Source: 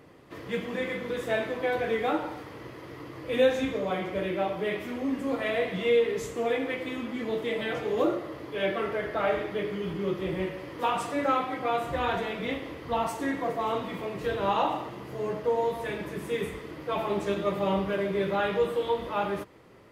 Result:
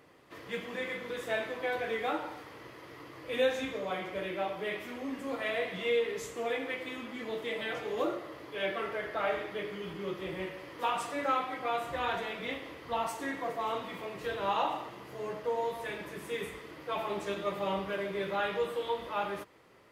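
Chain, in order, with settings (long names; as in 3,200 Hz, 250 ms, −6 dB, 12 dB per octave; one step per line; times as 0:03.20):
low-shelf EQ 470 Hz −9 dB
level −2 dB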